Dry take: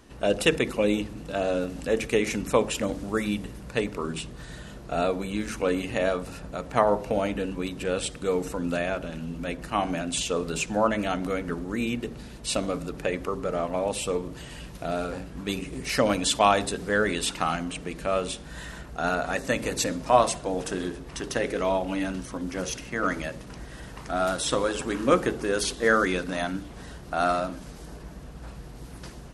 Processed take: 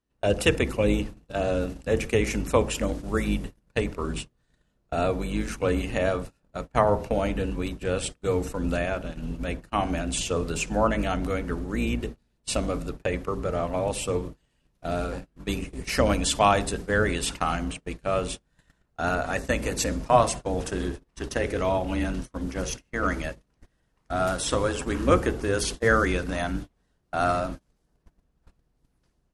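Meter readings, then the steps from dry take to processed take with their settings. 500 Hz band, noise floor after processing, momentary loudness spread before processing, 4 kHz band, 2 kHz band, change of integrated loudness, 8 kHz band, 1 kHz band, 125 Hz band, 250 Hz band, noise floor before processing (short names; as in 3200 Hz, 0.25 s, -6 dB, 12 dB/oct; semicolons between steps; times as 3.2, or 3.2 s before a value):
0.0 dB, -72 dBFS, 16 LU, -1.5 dB, 0.0 dB, +0.5 dB, -0.5 dB, 0.0 dB, +5.0 dB, 0.0 dB, -43 dBFS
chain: octaver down 2 oct, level 0 dB; gate -32 dBFS, range -31 dB; dynamic EQ 3800 Hz, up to -4 dB, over -47 dBFS, Q 4.5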